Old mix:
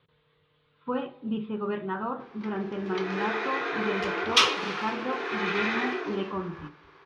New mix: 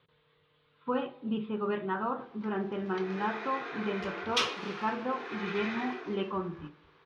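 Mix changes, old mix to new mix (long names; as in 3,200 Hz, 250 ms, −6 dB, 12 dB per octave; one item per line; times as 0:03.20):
background −9.0 dB
master: add low-shelf EQ 200 Hz −4.5 dB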